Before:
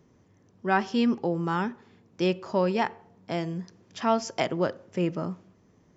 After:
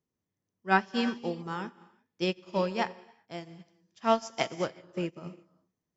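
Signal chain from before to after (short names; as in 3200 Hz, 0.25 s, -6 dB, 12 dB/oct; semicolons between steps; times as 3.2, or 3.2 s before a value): high shelf 2400 Hz +7.5 dB; non-linear reverb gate 0.4 s flat, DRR 6 dB; upward expander 2.5:1, over -37 dBFS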